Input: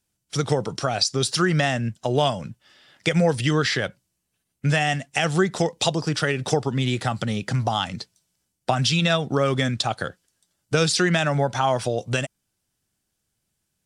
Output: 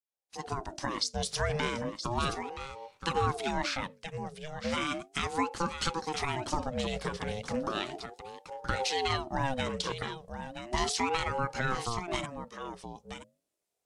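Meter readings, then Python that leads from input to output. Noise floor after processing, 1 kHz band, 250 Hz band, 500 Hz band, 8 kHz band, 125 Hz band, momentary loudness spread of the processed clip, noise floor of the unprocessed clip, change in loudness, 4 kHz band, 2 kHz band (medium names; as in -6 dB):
-85 dBFS, -5.5 dB, -11.5 dB, -11.0 dB, -9.0 dB, -14.5 dB, 12 LU, -77 dBFS, -10.5 dB, -9.5 dB, -9.5 dB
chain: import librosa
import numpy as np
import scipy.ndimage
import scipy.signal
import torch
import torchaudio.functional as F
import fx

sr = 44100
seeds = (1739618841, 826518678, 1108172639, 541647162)

y = fx.fade_in_head(x, sr, length_s=0.77)
y = fx.hum_notches(y, sr, base_hz=50, count=5)
y = y + 10.0 ** (-9.5 / 20.0) * np.pad(y, (int(974 * sr / 1000.0), 0))[:len(y)]
y = fx.ring_lfo(y, sr, carrier_hz=490.0, swing_pct=40, hz=0.35)
y = y * 10.0 ** (-7.0 / 20.0)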